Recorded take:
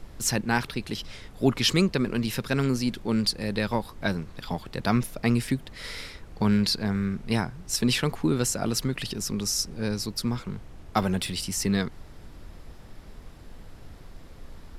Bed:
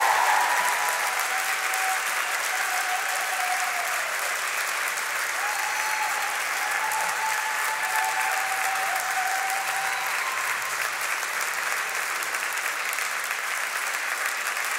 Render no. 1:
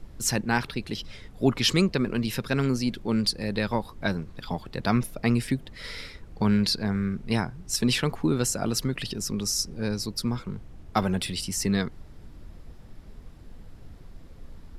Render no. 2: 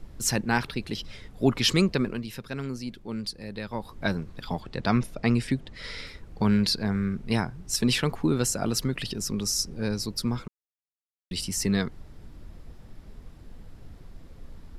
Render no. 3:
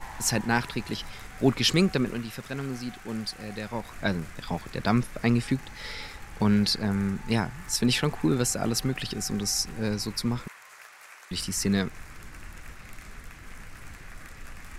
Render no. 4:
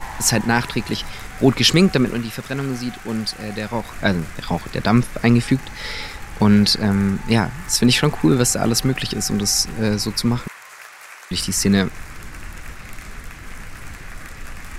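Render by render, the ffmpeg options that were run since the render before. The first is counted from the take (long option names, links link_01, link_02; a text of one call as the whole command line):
ffmpeg -i in.wav -af "afftdn=noise_reduction=6:noise_floor=-46" out.wav
ffmpeg -i in.wav -filter_complex "[0:a]asettb=1/sr,asplit=3[link_01][link_02][link_03];[link_01]atrim=end=4.604[link_04];[link_02]atrim=start=4.6:end=6.07,asetpts=PTS-STARTPTS,afade=type=in:duration=0.004:curve=qsin,afade=type=out:start_time=1.466:duration=0.004:curve=qsin,lowpass=8200[link_05];[link_03]atrim=start=6.066[link_06];[link_04][link_05]acrossfade=duration=0.004:curve1=hsin:curve2=qsin[link_07];[link_07][link_06]acrossfade=duration=0.004:curve1=qsin:curve2=hsin,asplit=5[link_08][link_09][link_10][link_11][link_12];[link_08]atrim=end=2.23,asetpts=PTS-STARTPTS,afade=type=out:start_time=2.01:duration=0.22:silence=0.375837[link_13];[link_09]atrim=start=2.23:end=3.72,asetpts=PTS-STARTPTS,volume=-8.5dB[link_14];[link_10]atrim=start=3.72:end=10.48,asetpts=PTS-STARTPTS,afade=type=in:duration=0.22:silence=0.375837,afade=type=out:start_time=6.756:duration=0.004:curve=hsin[link_15];[link_11]atrim=start=10.48:end=11.31,asetpts=PTS-STARTPTS,volume=0[link_16];[link_12]atrim=start=11.31,asetpts=PTS-STARTPTS,afade=type=in:duration=0.004:curve=hsin[link_17];[link_13][link_14][link_15][link_16][link_17]concat=n=5:v=0:a=1" out.wav
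ffmpeg -i in.wav -i bed.wav -filter_complex "[1:a]volume=-21.5dB[link_01];[0:a][link_01]amix=inputs=2:normalize=0" out.wav
ffmpeg -i in.wav -af "volume=9dB,alimiter=limit=-2dB:level=0:latency=1" out.wav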